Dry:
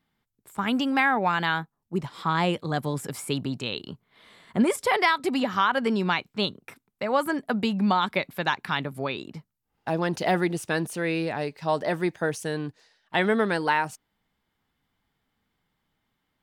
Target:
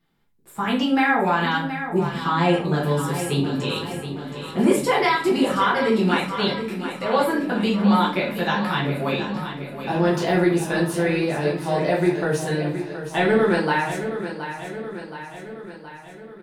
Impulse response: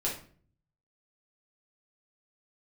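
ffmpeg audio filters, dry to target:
-filter_complex "[0:a]asplit=2[a][b];[b]alimiter=limit=-20.5dB:level=0:latency=1,volume=-3dB[c];[a][c]amix=inputs=2:normalize=0,aecho=1:1:722|1444|2166|2888|3610|4332|5054:0.316|0.187|0.11|0.0649|0.0383|0.0226|0.0133[d];[1:a]atrim=start_sample=2205[e];[d][e]afir=irnorm=-1:irlink=0,volume=-5dB"

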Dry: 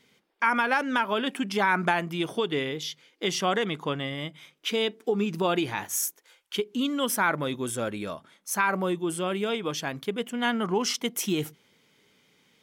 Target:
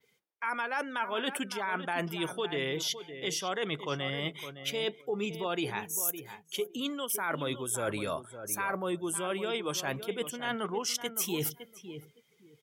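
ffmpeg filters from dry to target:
-filter_complex "[0:a]acrossover=split=210|4500[a][b][c];[b]highpass=290[d];[c]crystalizer=i=1.5:c=0[e];[a][d][e]amix=inputs=3:normalize=0,adynamicequalizer=threshold=0.01:dfrequency=8700:dqfactor=0.74:tfrequency=8700:tqfactor=0.74:attack=5:release=100:ratio=0.375:range=2:mode=cutabove:tftype=bell,areverse,acompressor=threshold=-36dB:ratio=8,areverse,asplit=2[f][g];[g]adelay=561,lowpass=f=3.9k:p=1,volume=-10.5dB,asplit=2[h][i];[i]adelay=561,lowpass=f=3.9k:p=1,volume=0.2,asplit=2[j][k];[k]adelay=561,lowpass=f=3.9k:p=1,volume=0.2[l];[f][h][j][l]amix=inputs=4:normalize=0,afftdn=nr=17:nf=-55,volume=6dB"

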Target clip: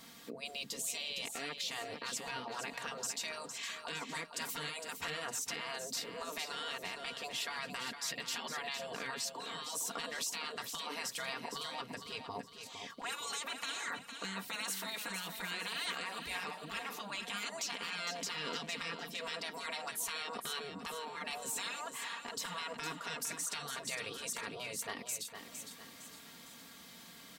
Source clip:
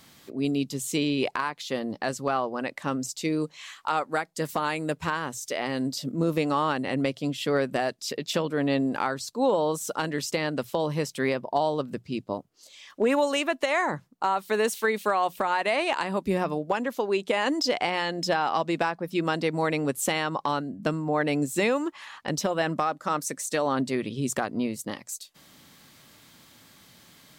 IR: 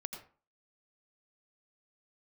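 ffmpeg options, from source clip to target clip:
-af "afftfilt=real='re*lt(hypot(re,im),0.0794)':imag='im*lt(hypot(re,im),0.0794)':win_size=1024:overlap=0.75,lowshelf=f=97:g=-9,aecho=1:1:4.3:0.55,alimiter=level_in=2.5dB:limit=-24dB:level=0:latency=1:release=60,volume=-2.5dB,aecho=1:1:459|918|1377|1836|2295:0.398|0.167|0.0702|0.0295|0.0124,volume=-1.5dB"

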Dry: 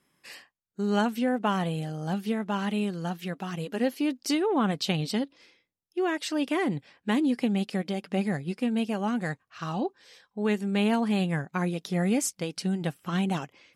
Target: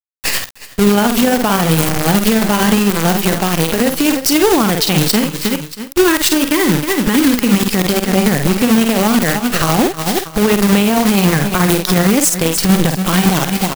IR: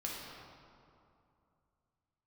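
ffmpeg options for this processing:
-filter_complex "[0:a]acrusher=bits=6:dc=4:mix=0:aa=0.000001,highshelf=f=9.5k:g=8.5,aecho=1:1:317|634:0.1|0.027,tremolo=f=11:d=0.68,asettb=1/sr,asplit=3[a][b][c];[a]atrim=end=5.214[d];[b]atrim=start=5.21:end=7.7,asetpts=PTS-STARTPTS,afade=t=in:d=0.004:c=qsin,afade=t=out:st=2.486:d=0.004:c=qsin,equalizer=f=690:t=o:w=0.25:g=-14.5[e];[c]atrim=start=7.696[f];[d][e]acrossfade=d=0.004:c1=hsin:c2=qsin[g];[g][f]acrossfade=d=0.004:c1=qsin:c2=hsin,acrusher=bits=3:mode=log:mix=0:aa=0.000001,asplit=2[h][i];[i]adelay=49,volume=-11dB[j];[h][j]amix=inputs=2:normalize=0,acompressor=threshold=-38dB:ratio=6,alimiter=level_in=35.5dB:limit=-1dB:release=50:level=0:latency=1,volume=-1dB"

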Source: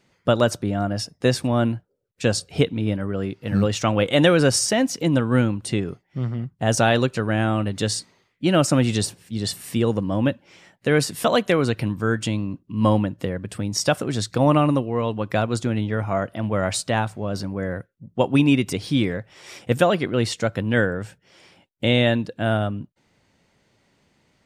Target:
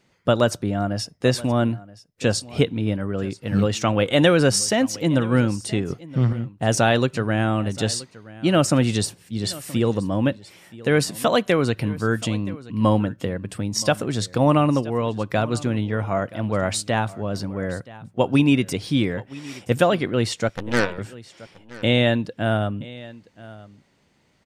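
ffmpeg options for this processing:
-filter_complex "[0:a]asettb=1/sr,asplit=3[a][b][c];[a]atrim=end=5.904[d];[b]atrim=start=5.9:end=6.33,asetpts=PTS-STARTPTS,afade=t=in:d=0.004:c=qsin,afade=t=out:st=0.426:d=0.004:c=qsin,acontrast=68[e];[c]atrim=start=6.326[f];[d][e]acrossfade=d=0.004:c1=hsin:c2=qsin[g];[g][f]acrossfade=d=0.004:c1=qsin:c2=hsin,asettb=1/sr,asplit=3[h][i][j];[h]atrim=end=20.484[k];[i]atrim=start=20.48:end=20.98,asetpts=PTS-STARTPTS,afade=t=in:d=0.004:c=qsin,afade=t=out:st=0.496:d=0.004:c=qsin,aeval=exprs='0.562*(cos(1*acos(clip(val(0)/0.562,-1,1)))-cos(1*PI/2))+0.0562*(cos(7*acos(clip(val(0)/0.562,-1,1)))-cos(7*PI/2))+0.0631*(cos(8*acos(clip(val(0)/0.562,-1,1)))-cos(8*PI/2))':c=same[l];[j]atrim=start=20.976[m];[k][l]acrossfade=d=0.004:c1=hsin:c2=qsin[n];[n][m]acrossfade=d=0.004:c1=qsin:c2=hsin,aecho=1:1:975:0.106"

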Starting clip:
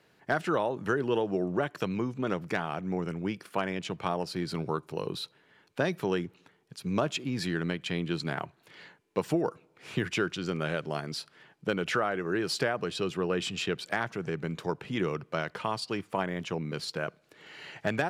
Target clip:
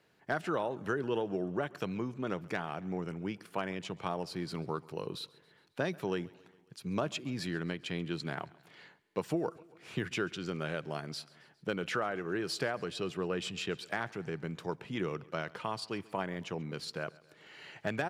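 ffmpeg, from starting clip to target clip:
-af "aecho=1:1:136|272|408|544:0.0708|0.0418|0.0246|0.0145,volume=-5dB"

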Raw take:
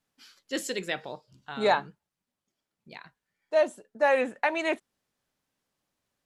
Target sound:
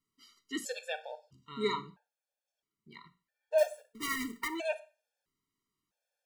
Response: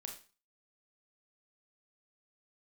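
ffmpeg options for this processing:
-filter_complex "[0:a]bandreject=f=60:t=h:w=6,bandreject=f=120:t=h:w=6,bandreject=f=180:t=h:w=6,bandreject=f=240:t=h:w=6,asettb=1/sr,asplit=3[a][b][c];[a]atrim=end=3.584[d];[b]atrim=start=3.58:end=4.48,asetpts=PTS-STARTPTS,afade=t=in:d=0.004:c=qsin,afade=t=out:st=0.896:d=0.004:c=qsin,acrusher=bits=2:mode=log:mix=0:aa=0.000001[e];[c]atrim=start=4.476[f];[d][e]acrossfade=d=0.004:c1=hsin:c2=qsin[g];[g][f]acrossfade=d=0.004:c1=qsin:c2=hsin,asplit=2[h][i];[1:a]atrim=start_sample=2205,afade=t=out:st=0.38:d=0.01,atrim=end_sample=17199[j];[i][j]afir=irnorm=-1:irlink=0,volume=-3.5dB[k];[h][k]amix=inputs=2:normalize=0,afftfilt=real='re*gt(sin(2*PI*0.76*pts/sr)*(1-2*mod(floor(b*sr/1024/460),2)),0)':imag='im*gt(sin(2*PI*0.76*pts/sr)*(1-2*mod(floor(b*sr/1024/460),2)),0)':win_size=1024:overlap=0.75,volume=-6dB"

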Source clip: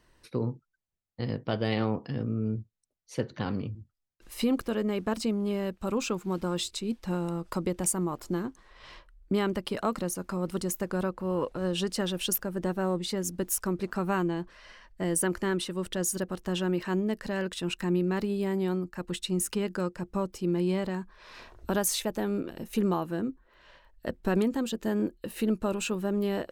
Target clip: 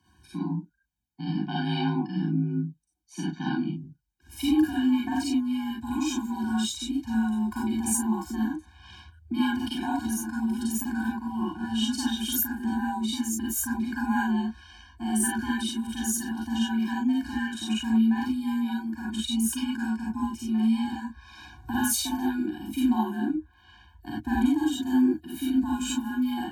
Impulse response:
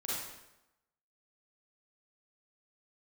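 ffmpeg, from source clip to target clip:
-filter_complex "[0:a]afreqshift=46[a];[1:a]atrim=start_sample=2205,atrim=end_sample=4410[b];[a][b]afir=irnorm=-1:irlink=0,afftfilt=real='re*eq(mod(floor(b*sr/1024/360),2),0)':imag='im*eq(mod(floor(b*sr/1024/360),2),0)':win_size=1024:overlap=0.75,volume=4dB"

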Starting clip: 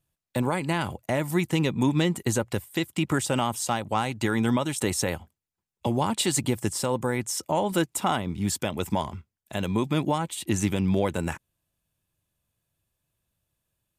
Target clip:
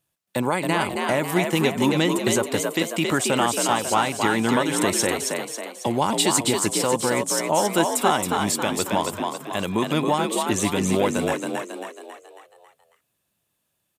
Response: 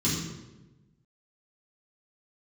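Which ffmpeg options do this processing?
-filter_complex "[0:a]highpass=f=280:p=1,asplit=7[a][b][c][d][e][f][g];[b]adelay=273,afreqshift=55,volume=-4dB[h];[c]adelay=546,afreqshift=110,volume=-10.2dB[i];[d]adelay=819,afreqshift=165,volume=-16.4dB[j];[e]adelay=1092,afreqshift=220,volume=-22.6dB[k];[f]adelay=1365,afreqshift=275,volume=-28.8dB[l];[g]adelay=1638,afreqshift=330,volume=-35dB[m];[a][h][i][j][k][l][m]amix=inputs=7:normalize=0,volume=5dB"

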